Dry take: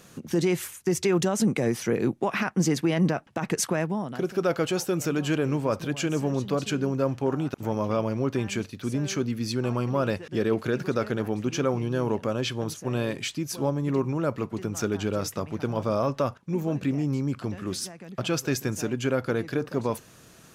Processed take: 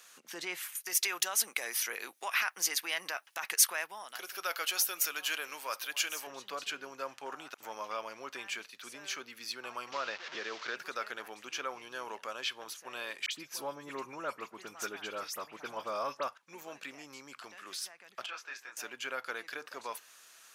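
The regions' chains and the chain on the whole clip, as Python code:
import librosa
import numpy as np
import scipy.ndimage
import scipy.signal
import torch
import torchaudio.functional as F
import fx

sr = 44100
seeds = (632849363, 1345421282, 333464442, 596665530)

y = fx.chain(x, sr, fx.riaa(side='recording'),
    fx.notch(hz=7600.0, q=9.6), at=(0.75, 6.27))
y = fx.chain(y, sr, fx.delta_mod(bps=32000, step_db=-34.0),
    fx.band_squash(depth_pct=70), at=(9.92, 10.76))
y = fx.chain(y, sr, fx.low_shelf(hz=400.0, db=8.5),
    fx.dispersion(late='highs', ms=53.0, hz=2700.0), at=(13.26, 16.28))
y = fx.chain(y, sr, fx.bandpass_q(hz=1300.0, q=0.79),
    fx.detune_double(cents=57), at=(18.26, 18.77))
y = scipy.signal.sosfilt(scipy.signal.butter(2, 1200.0, 'highpass', fs=sr, output='sos'), y)
y = fx.dynamic_eq(y, sr, hz=7300.0, q=1.0, threshold_db=-49.0, ratio=4.0, max_db=-7)
y = y * 10.0 ** (-1.5 / 20.0)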